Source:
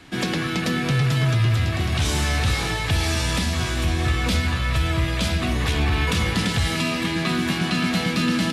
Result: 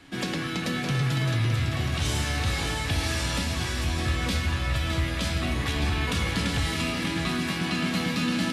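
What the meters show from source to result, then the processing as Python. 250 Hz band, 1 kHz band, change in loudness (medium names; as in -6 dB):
-5.0 dB, -4.5 dB, -5.0 dB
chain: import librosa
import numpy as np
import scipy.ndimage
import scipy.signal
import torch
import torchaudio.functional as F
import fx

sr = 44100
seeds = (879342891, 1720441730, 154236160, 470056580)

p1 = fx.comb_fb(x, sr, f0_hz=280.0, decay_s=0.73, harmonics='all', damping=0.0, mix_pct=80)
p2 = p1 + fx.echo_single(p1, sr, ms=613, db=-7.5, dry=0)
y = p2 * librosa.db_to_amplitude(7.5)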